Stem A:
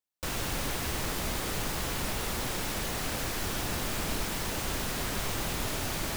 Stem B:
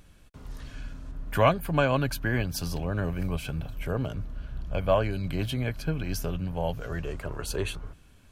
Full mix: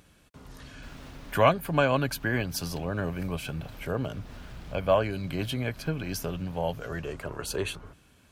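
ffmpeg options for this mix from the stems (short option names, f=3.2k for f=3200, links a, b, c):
-filter_complex "[0:a]acrossover=split=5200[a][b];[b]acompressor=threshold=-50dB:ratio=4:attack=1:release=60[c];[a][c]amix=inputs=2:normalize=0,adelay=600,volume=-11dB[d];[1:a]highpass=f=140:p=1,volume=1dB,asplit=2[e][f];[f]apad=whole_len=298406[g];[d][g]sidechaincompress=threshold=-48dB:ratio=3:attack=16:release=166[h];[h][e]amix=inputs=2:normalize=0"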